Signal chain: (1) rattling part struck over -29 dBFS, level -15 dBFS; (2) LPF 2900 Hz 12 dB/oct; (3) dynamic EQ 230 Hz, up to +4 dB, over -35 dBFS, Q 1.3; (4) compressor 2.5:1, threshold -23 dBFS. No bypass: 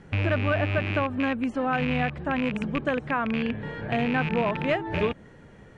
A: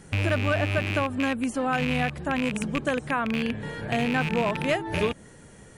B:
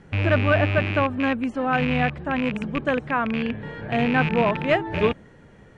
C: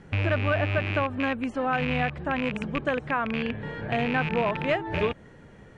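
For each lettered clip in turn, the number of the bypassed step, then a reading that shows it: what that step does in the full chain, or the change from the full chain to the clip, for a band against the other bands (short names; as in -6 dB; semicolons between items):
2, 4 kHz band +3.5 dB; 4, loudness change +4.0 LU; 3, 250 Hz band -3.0 dB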